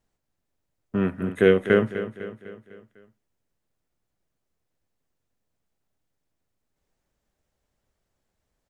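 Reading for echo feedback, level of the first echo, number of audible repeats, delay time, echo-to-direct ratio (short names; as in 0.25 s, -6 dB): 51%, -12.0 dB, 4, 0.251 s, -10.5 dB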